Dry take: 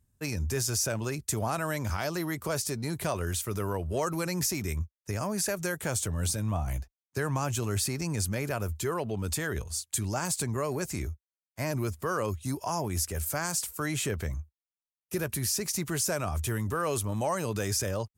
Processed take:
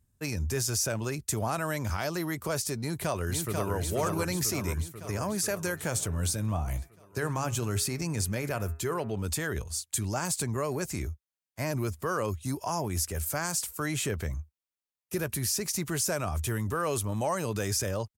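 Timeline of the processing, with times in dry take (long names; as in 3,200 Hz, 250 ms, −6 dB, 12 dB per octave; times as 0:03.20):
0:02.80–0:03.75: delay throw 490 ms, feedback 65%, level −4 dB
0:05.60–0:09.26: hum removal 136.8 Hz, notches 19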